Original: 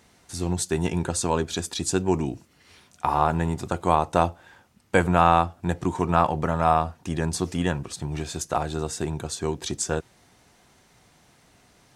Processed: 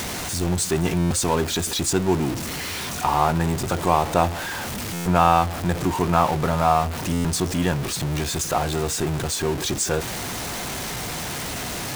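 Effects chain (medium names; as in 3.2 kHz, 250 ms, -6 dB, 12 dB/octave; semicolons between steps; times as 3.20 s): jump at every zero crossing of -24 dBFS; buffer glitch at 0.98/4.93/7.12 s, samples 512, times 10; tape noise reduction on one side only encoder only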